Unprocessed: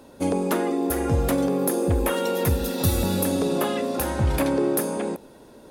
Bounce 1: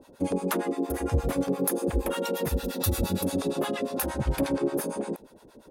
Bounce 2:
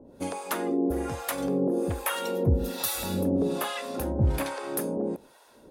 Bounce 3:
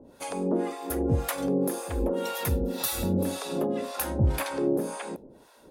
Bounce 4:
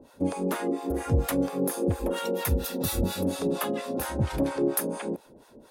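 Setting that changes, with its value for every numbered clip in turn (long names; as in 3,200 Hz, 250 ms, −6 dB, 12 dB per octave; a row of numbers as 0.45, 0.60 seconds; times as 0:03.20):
two-band tremolo in antiphase, speed: 8.6, 1.2, 1.9, 4.3 Hertz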